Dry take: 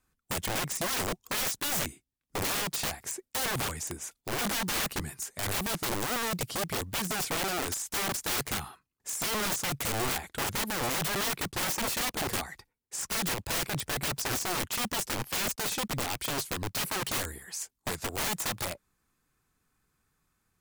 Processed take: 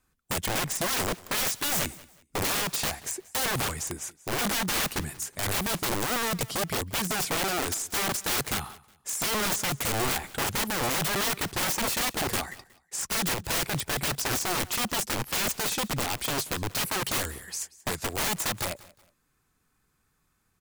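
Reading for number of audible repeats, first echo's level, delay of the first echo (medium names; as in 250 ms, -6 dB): 2, -21.0 dB, 183 ms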